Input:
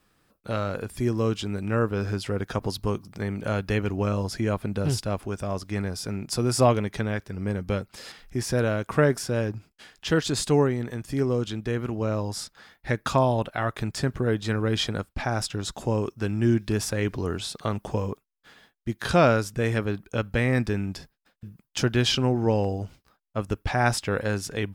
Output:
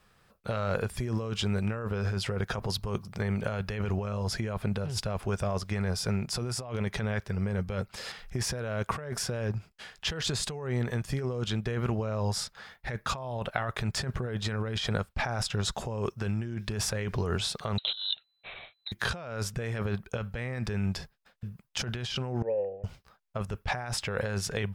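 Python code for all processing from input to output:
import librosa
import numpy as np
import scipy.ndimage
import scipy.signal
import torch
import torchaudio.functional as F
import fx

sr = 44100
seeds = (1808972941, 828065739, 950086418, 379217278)

y = fx.chain(x, sr, fx.over_compress(threshold_db=-33.0, ratio=-0.5),
    fx.freq_invert(carrier_hz=4000), at=(17.78, 18.92))
y = fx.chain(y, sr, fx.formant_cascade(vowel='e'),
    fx.low_shelf(hz=190.0, db=-11.5), at=(22.42, 22.84))
y = fx.peak_eq(y, sr, hz=290.0, db=-14.5, octaves=0.42)
y = fx.over_compress(y, sr, threshold_db=-31.0, ratio=-1.0)
y = fx.high_shelf(y, sr, hz=6800.0, db=-7.0)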